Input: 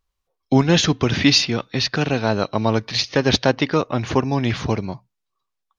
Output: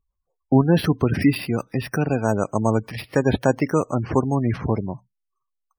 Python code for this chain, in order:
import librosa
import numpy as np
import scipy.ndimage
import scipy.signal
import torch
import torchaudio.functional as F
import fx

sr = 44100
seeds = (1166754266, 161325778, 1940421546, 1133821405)

y = fx.air_absorb(x, sr, metres=360.0)
y = np.repeat(scipy.signal.resample_poly(y, 1, 6), 6)[:len(y)]
y = fx.spec_gate(y, sr, threshold_db=-25, keep='strong')